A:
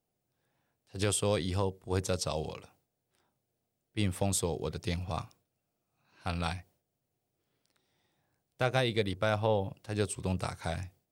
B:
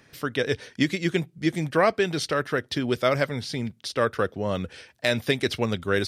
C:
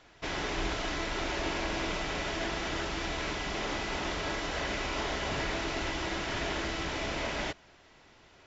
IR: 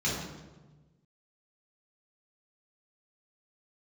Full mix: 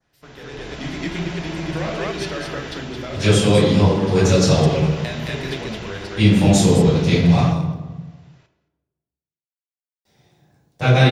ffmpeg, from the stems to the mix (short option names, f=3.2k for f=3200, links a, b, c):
-filter_complex "[0:a]adelay=2200,volume=-0.5dB,asplit=3[a][b][c];[a]atrim=end=7.78,asetpts=PTS-STARTPTS,afade=t=out:st=7.776:d=0.004:c=hsin[d];[b]atrim=start=7.78:end=10.05,asetpts=PTS-STARTPTS,volume=0[e];[c]atrim=start=10.05,asetpts=PTS-STARTPTS,afade=t=in:d=0.004:c=hsin[f];[d][e][f]concat=n=3:v=0:a=1,asplit=3[g][h][i];[h]volume=-5dB[j];[i]volume=-14.5dB[k];[1:a]volume=-17dB,asplit=3[l][m][n];[m]volume=-14.5dB[o];[n]volume=-5.5dB[p];[2:a]volume=-13.5dB,asplit=3[q][r][s];[r]volume=-16.5dB[t];[s]volume=-23dB[u];[g][l]amix=inputs=2:normalize=0,acompressor=threshold=-40dB:ratio=6,volume=0dB[v];[3:a]atrim=start_sample=2205[w];[j][o][t]amix=inputs=3:normalize=0[x];[x][w]afir=irnorm=-1:irlink=0[y];[k][p][u]amix=inputs=3:normalize=0,aecho=0:1:220:1[z];[q][v][y][z]amix=inputs=4:normalize=0,adynamicequalizer=threshold=0.00355:dfrequency=2800:dqfactor=0.96:tfrequency=2800:tqfactor=0.96:attack=5:release=100:ratio=0.375:range=2:mode=boostabove:tftype=bell,dynaudnorm=f=180:g=7:m=12.5dB"